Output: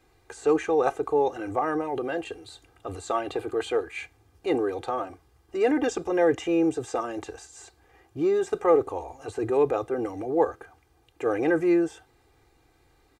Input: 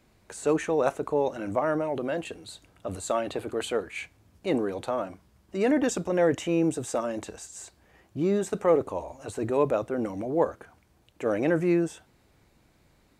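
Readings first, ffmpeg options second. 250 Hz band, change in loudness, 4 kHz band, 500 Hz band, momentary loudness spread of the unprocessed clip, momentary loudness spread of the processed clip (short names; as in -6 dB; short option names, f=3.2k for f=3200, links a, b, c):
+0.5 dB, +1.5 dB, -1.0 dB, +1.5 dB, 15 LU, 16 LU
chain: -filter_complex "[0:a]equalizer=f=860:t=o:w=2.4:g=3.5,acrossover=split=7100[a][b];[b]acompressor=threshold=-55dB:ratio=4:attack=1:release=60[c];[a][c]amix=inputs=2:normalize=0,aecho=1:1:2.5:0.79,volume=-3dB"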